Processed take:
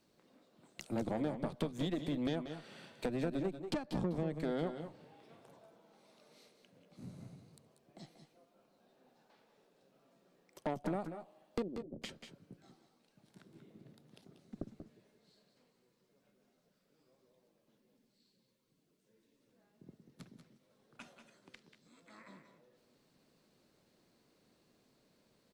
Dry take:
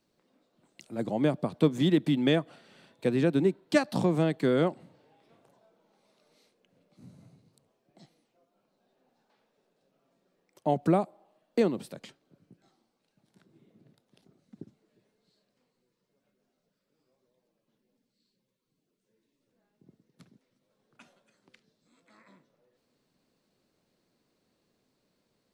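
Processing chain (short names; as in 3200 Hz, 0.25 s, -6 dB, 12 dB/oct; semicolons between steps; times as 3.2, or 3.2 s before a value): 3.66–4.37 tilt -2 dB/oct; compressor 16:1, threshold -35 dBFS, peak gain reduction 20.5 dB; tube stage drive 35 dB, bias 0.7; 11.62–12.02 ladder low-pass 530 Hz, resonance 25%; tapped delay 0.187/0.2 s -10/-14 dB; gain +6.5 dB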